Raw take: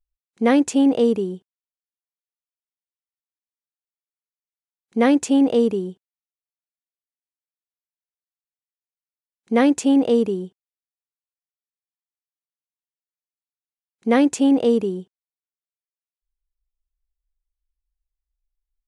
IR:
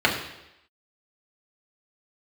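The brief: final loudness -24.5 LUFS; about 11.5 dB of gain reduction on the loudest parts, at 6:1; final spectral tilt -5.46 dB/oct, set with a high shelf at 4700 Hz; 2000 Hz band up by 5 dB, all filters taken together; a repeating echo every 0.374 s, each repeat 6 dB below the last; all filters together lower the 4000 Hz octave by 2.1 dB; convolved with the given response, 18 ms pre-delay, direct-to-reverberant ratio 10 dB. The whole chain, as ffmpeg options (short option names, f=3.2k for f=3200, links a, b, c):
-filter_complex "[0:a]equalizer=f=2k:t=o:g=7.5,equalizer=f=4k:t=o:g=-4,highshelf=f=4.7k:g=-6.5,acompressor=threshold=-25dB:ratio=6,aecho=1:1:374|748|1122|1496|1870|2244:0.501|0.251|0.125|0.0626|0.0313|0.0157,asplit=2[a][b];[1:a]atrim=start_sample=2205,adelay=18[c];[b][c]afir=irnorm=-1:irlink=0,volume=-28.5dB[d];[a][d]amix=inputs=2:normalize=0,volume=5dB"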